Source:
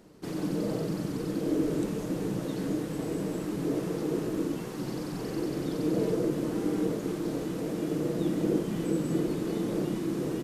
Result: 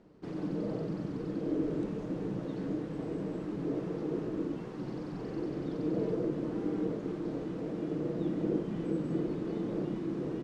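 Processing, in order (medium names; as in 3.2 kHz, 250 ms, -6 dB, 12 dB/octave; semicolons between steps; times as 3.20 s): low-pass 5.2 kHz 12 dB/octave; treble shelf 2.4 kHz -9 dB; trim -4 dB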